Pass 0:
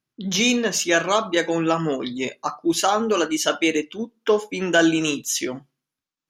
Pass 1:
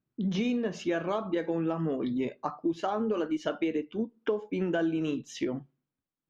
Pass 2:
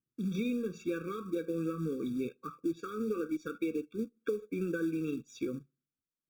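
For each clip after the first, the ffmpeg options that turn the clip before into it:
-af "lowpass=3200,tiltshelf=f=800:g=6.5,acompressor=threshold=0.0631:ratio=5,volume=0.708"
-filter_complex "[0:a]asplit=2[s0][s1];[s1]aeval=exprs='sgn(val(0))*max(abs(val(0))-0.00398,0)':c=same,volume=0.708[s2];[s0][s2]amix=inputs=2:normalize=0,acrusher=bits=6:mode=log:mix=0:aa=0.000001,afftfilt=real='re*eq(mod(floor(b*sr/1024/550),2),0)':imag='im*eq(mod(floor(b*sr/1024/550),2),0)':win_size=1024:overlap=0.75,volume=0.376"

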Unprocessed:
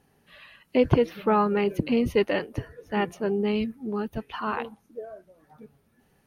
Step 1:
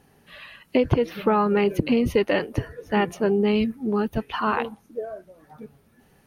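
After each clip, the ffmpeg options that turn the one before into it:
-af "acompressor=threshold=0.0708:ratio=5,volume=2.11"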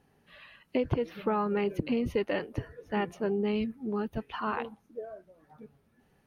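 -af "highshelf=f=5700:g=-7,volume=0.376"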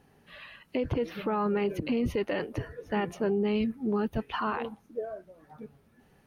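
-af "alimiter=level_in=1.26:limit=0.0631:level=0:latency=1:release=26,volume=0.794,volume=1.78"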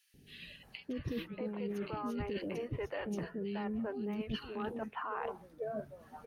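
-filter_complex "[0:a]acrossover=split=430|2400[s0][s1][s2];[s0]adelay=140[s3];[s1]adelay=630[s4];[s3][s4][s2]amix=inputs=3:normalize=0,areverse,acompressor=threshold=0.0126:ratio=10,areverse,volume=1.41"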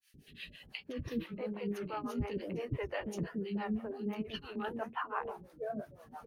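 -filter_complex "[0:a]flanger=delay=9.1:depth=9.7:regen=-64:speed=1.2:shape=triangular,acrossover=split=420[s0][s1];[s0]aeval=exprs='val(0)*(1-1/2+1/2*cos(2*PI*5.9*n/s))':c=same[s2];[s1]aeval=exprs='val(0)*(1-1/2-1/2*cos(2*PI*5.9*n/s))':c=same[s3];[s2][s3]amix=inputs=2:normalize=0,volume=2.99"

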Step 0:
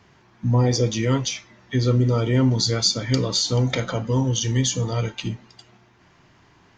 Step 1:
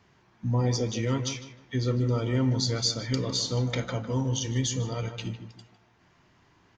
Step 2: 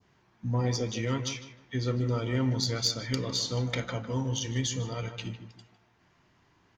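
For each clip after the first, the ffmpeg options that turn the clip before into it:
-filter_complex "[0:a]asplit=2[s0][s1];[s1]adelay=154,lowpass=f=1900:p=1,volume=0.355,asplit=2[s2][s3];[s3]adelay=154,lowpass=f=1900:p=1,volume=0.33,asplit=2[s4][s5];[s5]adelay=154,lowpass=f=1900:p=1,volume=0.33,asplit=2[s6][s7];[s7]adelay=154,lowpass=f=1900:p=1,volume=0.33[s8];[s0][s2][s4][s6][s8]amix=inputs=5:normalize=0,volume=0.447"
-af "adynamicequalizer=threshold=0.00708:dfrequency=2100:dqfactor=0.71:tfrequency=2100:tqfactor=0.71:attack=5:release=100:ratio=0.375:range=2:mode=boostabove:tftype=bell,aeval=exprs='0.282*(cos(1*acos(clip(val(0)/0.282,-1,1)))-cos(1*PI/2))+0.0316*(cos(3*acos(clip(val(0)/0.282,-1,1)))-cos(3*PI/2))':c=same"

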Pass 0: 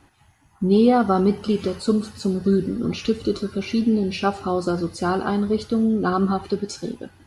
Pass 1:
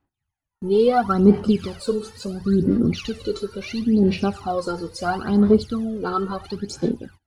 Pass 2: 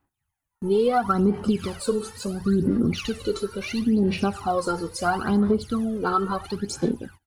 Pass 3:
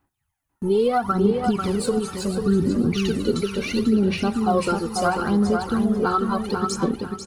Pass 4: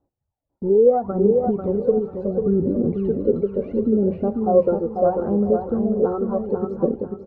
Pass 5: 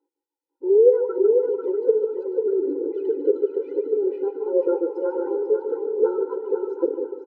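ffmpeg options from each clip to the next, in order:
-af "aphaser=in_gain=1:out_gain=1:delay=2.3:decay=0.73:speed=0.73:type=sinusoidal,agate=range=0.0447:threshold=0.0112:ratio=16:detection=peak,volume=0.631"
-af "firequalizer=gain_entry='entry(610,0);entry(940,4);entry(4600,-1);entry(8800,7)':delay=0.05:min_phase=1,acompressor=threshold=0.141:ratio=6"
-filter_complex "[0:a]alimiter=limit=0.188:level=0:latency=1:release=289,asplit=2[s0][s1];[s1]adelay=493,lowpass=f=4700:p=1,volume=0.562,asplit=2[s2][s3];[s3]adelay=493,lowpass=f=4700:p=1,volume=0.28,asplit=2[s4][s5];[s5]adelay=493,lowpass=f=4700:p=1,volume=0.28,asplit=2[s6][s7];[s7]adelay=493,lowpass=f=4700:p=1,volume=0.28[s8];[s0][s2][s4][s6][s8]amix=inputs=5:normalize=0,volume=1.41"
-af "lowpass=f=550:t=q:w=3.9,volume=0.75"
-af "aecho=1:1:148|296|444|592:0.335|0.131|0.0509|0.0199,afftfilt=real='re*eq(mod(floor(b*sr/1024/260),2),1)':imag='im*eq(mod(floor(b*sr/1024/260),2),1)':win_size=1024:overlap=0.75"

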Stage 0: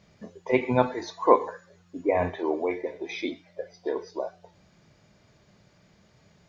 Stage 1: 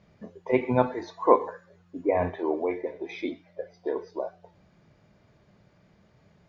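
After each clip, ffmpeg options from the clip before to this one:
-af "lowpass=f=1900:p=1"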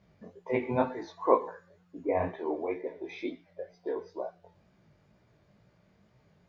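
-af "flanger=delay=15.5:depth=6.4:speed=2.1,volume=0.841"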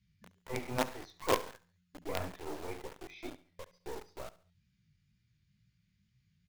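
-filter_complex "[0:a]acrossover=split=190|2000[s0][s1][s2];[s1]acrusher=bits=4:dc=4:mix=0:aa=0.000001[s3];[s0][s3][s2]amix=inputs=3:normalize=0,aeval=exprs='(tanh(5.01*val(0)+0.3)-tanh(0.3))/5.01':c=same,aecho=1:1:70|140|210:0.126|0.0466|0.0172,volume=0.631"

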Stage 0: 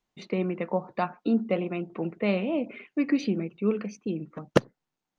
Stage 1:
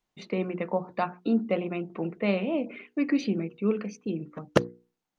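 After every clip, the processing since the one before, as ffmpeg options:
-af "bandreject=f=60:t=h:w=6,bandreject=f=120:t=h:w=6,bandreject=f=180:t=h:w=6,bandreject=f=240:t=h:w=6,bandreject=f=300:t=h:w=6,bandreject=f=360:t=h:w=6,bandreject=f=420:t=h:w=6,bandreject=f=480:t=h:w=6"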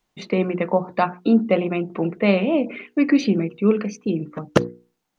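-af "alimiter=level_in=2.99:limit=0.891:release=50:level=0:latency=1,volume=0.891"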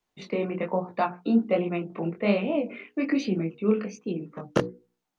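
-filter_complex "[0:a]acrossover=split=130|930[s0][s1][s2];[s1]crystalizer=i=7.5:c=0[s3];[s0][s3][s2]amix=inputs=3:normalize=0,flanger=delay=16.5:depth=7.1:speed=1.2,volume=0.631"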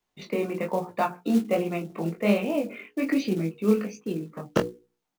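-filter_complex "[0:a]acrusher=bits=6:mode=log:mix=0:aa=0.000001,asplit=2[s0][s1];[s1]adelay=19,volume=0.335[s2];[s0][s2]amix=inputs=2:normalize=0"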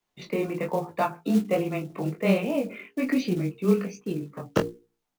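-af "afreqshift=-14"

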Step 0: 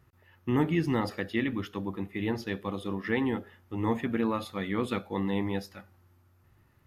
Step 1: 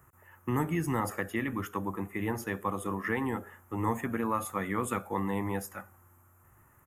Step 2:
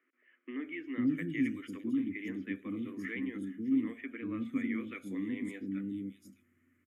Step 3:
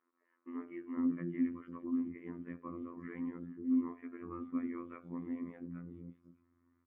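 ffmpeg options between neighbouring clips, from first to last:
-filter_complex "[0:a]acrossover=split=160|3000[s0][s1][s2];[s1]acompressor=threshold=0.02:ratio=2.5[s3];[s0][s3][s2]amix=inputs=3:normalize=0,firequalizer=gain_entry='entry(240,0);entry(1100,10);entry(4200,-15);entry(7100,13)':delay=0.05:min_phase=1"
-filter_complex "[0:a]asplit=3[s0][s1][s2];[s0]bandpass=f=270:t=q:w=8,volume=1[s3];[s1]bandpass=f=2290:t=q:w=8,volume=0.501[s4];[s2]bandpass=f=3010:t=q:w=8,volume=0.355[s5];[s3][s4][s5]amix=inputs=3:normalize=0,acrossover=split=360|3800[s6][s7][s8];[s6]adelay=500[s9];[s8]adelay=610[s10];[s9][s7][s10]amix=inputs=3:normalize=0,volume=2.82"
-af "afftfilt=real='hypot(re,im)*cos(PI*b)':imag='0':win_size=2048:overlap=0.75,lowpass=f=1000:t=q:w=5.8,volume=0.891"

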